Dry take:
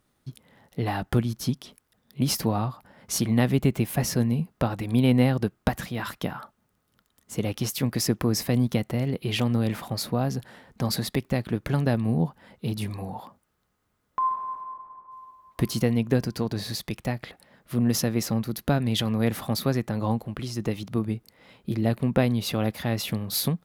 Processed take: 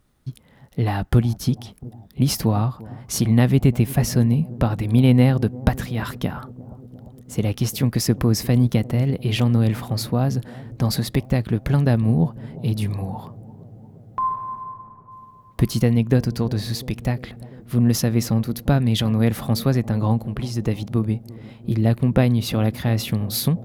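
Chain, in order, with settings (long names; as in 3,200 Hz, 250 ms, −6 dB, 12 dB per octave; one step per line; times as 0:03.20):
low-shelf EQ 120 Hz +12 dB
on a send: bucket-brigade delay 348 ms, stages 2,048, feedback 73%, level −19 dB
on the sum: level +2 dB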